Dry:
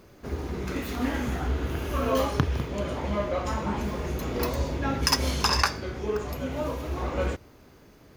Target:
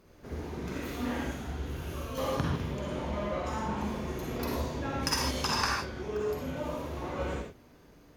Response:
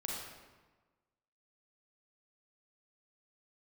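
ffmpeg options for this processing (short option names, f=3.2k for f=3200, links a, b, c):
-filter_complex "[0:a]asettb=1/sr,asplit=3[a][b][c];[a]atrim=end=1.244[d];[b]atrim=start=1.24:end=2.18,asetpts=PTS-STARTPTS,afade=t=in:d=0.004:c=qsin,afade=t=out:st=0.936:d=0.004:c=qsin,acrossover=split=160|3000[e][f][g];[f]acompressor=threshold=-36dB:ratio=6[h];[e][h][g]amix=inputs=3:normalize=0[i];[c]atrim=start=2.176[j];[d][i]acrossfade=d=0.004:c1=hsin:c2=qsin[k];[k][j]acrossfade=d=0.004:c1=qsin:c2=hsin[l];[1:a]atrim=start_sample=2205,atrim=end_sample=6174,asetrate=35721,aresample=44100[m];[l][m]afir=irnorm=-1:irlink=0,volume=-6dB"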